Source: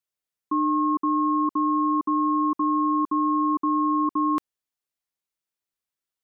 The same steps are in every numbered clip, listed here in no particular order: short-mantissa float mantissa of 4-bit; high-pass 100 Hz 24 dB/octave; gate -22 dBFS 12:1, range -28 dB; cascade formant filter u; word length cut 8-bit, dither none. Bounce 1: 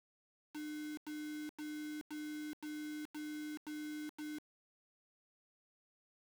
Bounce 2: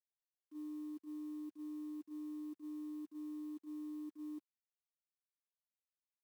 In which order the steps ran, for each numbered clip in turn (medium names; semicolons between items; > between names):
high-pass > short-mantissa float > cascade formant filter > gate > word length cut; cascade formant filter > short-mantissa float > word length cut > high-pass > gate